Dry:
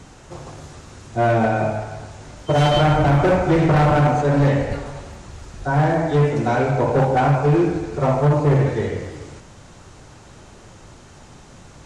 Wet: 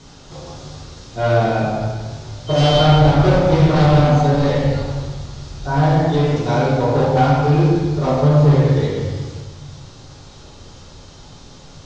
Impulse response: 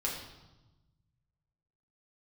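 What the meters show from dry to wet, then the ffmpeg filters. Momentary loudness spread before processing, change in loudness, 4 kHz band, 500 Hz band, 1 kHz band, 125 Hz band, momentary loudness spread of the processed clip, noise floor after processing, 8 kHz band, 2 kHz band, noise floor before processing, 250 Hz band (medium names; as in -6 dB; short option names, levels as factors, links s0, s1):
18 LU, +2.5 dB, +6.5 dB, +2.0 dB, +1.0 dB, +4.0 dB, 19 LU, -41 dBFS, no reading, -1.0 dB, -45 dBFS, +3.0 dB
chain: -filter_complex "[0:a]lowpass=f=6200:w=0.5412,lowpass=f=6200:w=1.3066,highshelf=f=2900:t=q:w=1.5:g=7[s0];[1:a]atrim=start_sample=2205[s1];[s0][s1]afir=irnorm=-1:irlink=0,volume=0.708"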